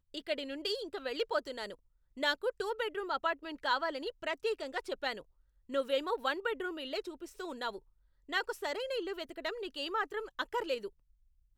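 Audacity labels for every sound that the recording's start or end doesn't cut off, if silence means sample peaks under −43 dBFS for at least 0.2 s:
2.170000	5.210000	sound
5.700000	7.780000	sound
8.290000	10.880000	sound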